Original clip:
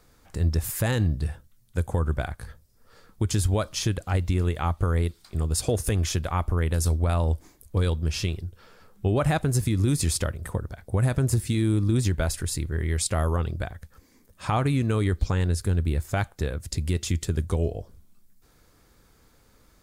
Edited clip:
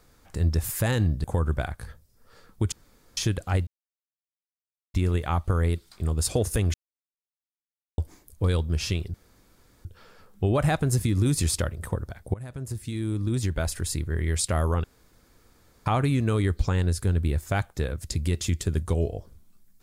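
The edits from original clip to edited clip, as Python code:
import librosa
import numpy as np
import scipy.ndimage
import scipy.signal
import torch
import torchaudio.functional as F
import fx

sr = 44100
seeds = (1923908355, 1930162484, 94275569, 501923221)

y = fx.edit(x, sr, fx.cut(start_s=1.24, length_s=0.6),
    fx.room_tone_fill(start_s=3.32, length_s=0.45),
    fx.insert_silence(at_s=4.27, length_s=1.27),
    fx.silence(start_s=6.07, length_s=1.24),
    fx.insert_room_tone(at_s=8.47, length_s=0.71),
    fx.fade_in_from(start_s=10.96, length_s=1.62, floor_db=-19.5),
    fx.room_tone_fill(start_s=13.46, length_s=1.02), tone=tone)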